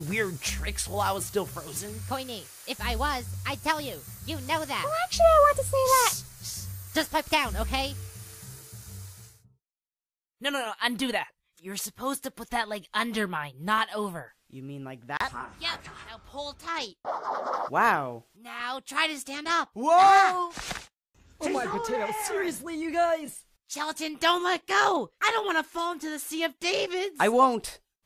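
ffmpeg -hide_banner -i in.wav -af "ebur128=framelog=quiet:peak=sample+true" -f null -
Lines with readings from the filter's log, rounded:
Integrated loudness:
  I:         -27.0 LUFS
  Threshold: -37.8 LUFS
Loudness range:
  LRA:         9.3 LU
  Threshold: -47.9 LUFS
  LRA low:   -33.4 LUFS
  LRA high:  -24.1 LUFS
Sample peak:
  Peak:       -9.1 dBFS
True peak:
  Peak:       -9.0 dBFS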